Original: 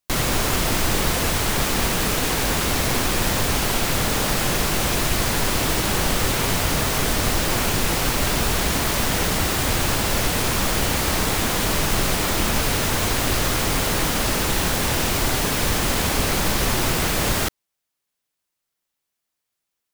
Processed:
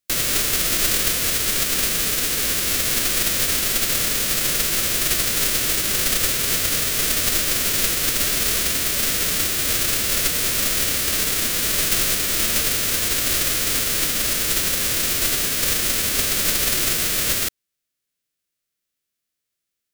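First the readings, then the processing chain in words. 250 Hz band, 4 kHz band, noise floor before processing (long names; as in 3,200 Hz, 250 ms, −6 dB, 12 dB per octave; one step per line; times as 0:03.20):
−7.0 dB, +2.0 dB, −81 dBFS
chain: spectral envelope flattened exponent 0.3
parametric band 880 Hz −13 dB 0.7 octaves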